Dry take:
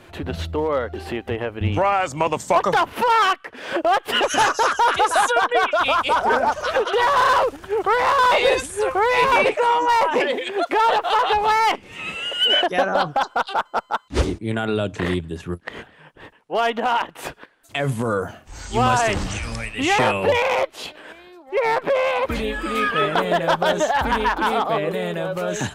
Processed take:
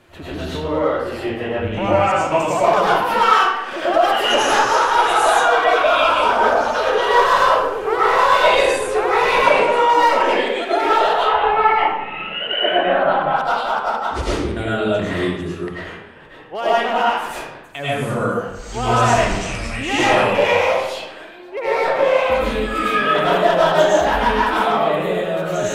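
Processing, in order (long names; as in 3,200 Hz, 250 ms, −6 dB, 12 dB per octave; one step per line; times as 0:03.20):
0:11.13–0:13.35: low-pass filter 2,700 Hz 24 dB per octave
comb and all-pass reverb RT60 0.95 s, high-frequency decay 0.7×, pre-delay 65 ms, DRR −9 dB
level −6 dB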